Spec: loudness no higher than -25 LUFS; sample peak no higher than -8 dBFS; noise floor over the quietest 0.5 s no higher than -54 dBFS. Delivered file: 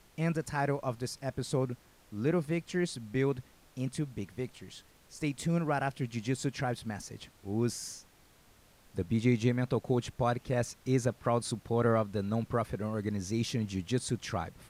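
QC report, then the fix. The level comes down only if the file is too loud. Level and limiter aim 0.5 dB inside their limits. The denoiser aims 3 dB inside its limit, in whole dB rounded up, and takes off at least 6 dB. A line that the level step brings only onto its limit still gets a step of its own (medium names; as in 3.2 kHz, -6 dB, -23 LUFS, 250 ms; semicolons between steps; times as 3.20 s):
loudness -33.0 LUFS: pass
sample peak -15.5 dBFS: pass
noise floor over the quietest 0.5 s -62 dBFS: pass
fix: none needed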